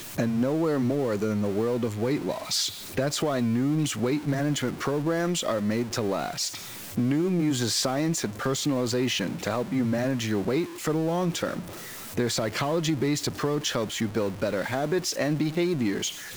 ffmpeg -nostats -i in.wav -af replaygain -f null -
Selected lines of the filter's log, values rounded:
track_gain = +9.0 dB
track_peak = 0.150